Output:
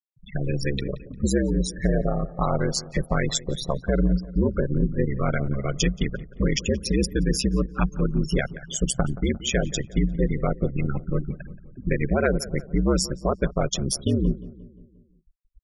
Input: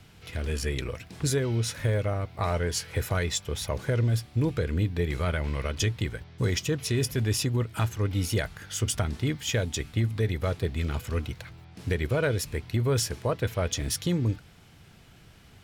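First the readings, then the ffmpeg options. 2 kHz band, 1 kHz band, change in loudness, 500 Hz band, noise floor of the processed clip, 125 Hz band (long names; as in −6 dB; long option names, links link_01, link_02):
+1.5 dB, +4.5 dB, +3.0 dB, +4.0 dB, −56 dBFS, +0.5 dB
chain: -filter_complex "[0:a]aeval=exprs='val(0)*sin(2*PI*67*n/s)':channel_layout=same,asplit=2[link_01][link_02];[link_02]acompressor=threshold=-37dB:ratio=20,volume=-1dB[link_03];[link_01][link_03]amix=inputs=2:normalize=0,afftfilt=real='re*gte(hypot(re,im),0.0398)':imag='im*gte(hypot(re,im),0.0398)':win_size=1024:overlap=0.75,asplit=2[link_04][link_05];[link_05]adelay=176,lowpass=frequency=2000:poles=1,volume=-17.5dB,asplit=2[link_06][link_07];[link_07]adelay=176,lowpass=frequency=2000:poles=1,volume=0.54,asplit=2[link_08][link_09];[link_09]adelay=176,lowpass=frequency=2000:poles=1,volume=0.54,asplit=2[link_10][link_11];[link_11]adelay=176,lowpass=frequency=2000:poles=1,volume=0.54,asplit=2[link_12][link_13];[link_13]adelay=176,lowpass=frequency=2000:poles=1,volume=0.54[link_14];[link_04][link_06][link_08][link_10][link_12][link_14]amix=inputs=6:normalize=0,volume=5.5dB"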